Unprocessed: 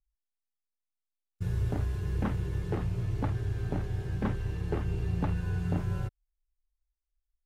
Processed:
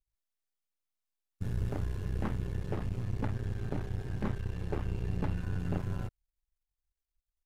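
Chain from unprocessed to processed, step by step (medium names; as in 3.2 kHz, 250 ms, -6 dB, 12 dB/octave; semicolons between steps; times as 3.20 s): partial rectifier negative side -12 dB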